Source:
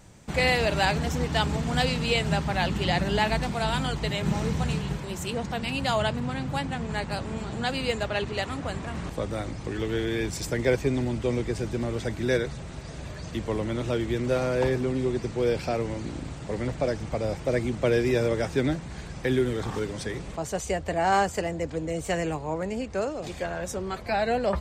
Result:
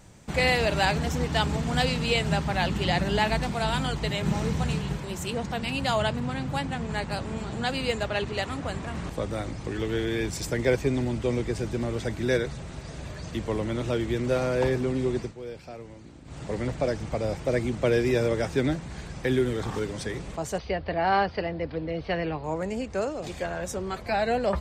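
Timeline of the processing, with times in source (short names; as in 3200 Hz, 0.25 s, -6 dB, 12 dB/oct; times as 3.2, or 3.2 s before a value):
15.2–16.39 dip -13.5 dB, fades 0.14 s
20.58–22.44 elliptic low-pass 4800 Hz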